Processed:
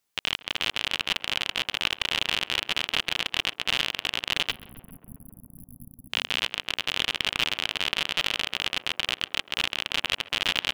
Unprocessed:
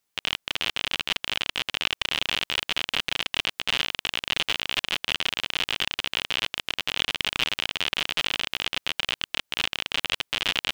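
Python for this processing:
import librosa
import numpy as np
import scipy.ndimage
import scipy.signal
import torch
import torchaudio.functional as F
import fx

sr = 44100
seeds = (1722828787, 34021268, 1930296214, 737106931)

y = fx.brickwall_bandstop(x, sr, low_hz=280.0, high_hz=10000.0, at=(4.5, 6.09), fade=0.02)
y = fx.echo_tape(y, sr, ms=135, feedback_pct=86, wet_db=-14, lp_hz=1500.0, drive_db=8.0, wow_cents=35)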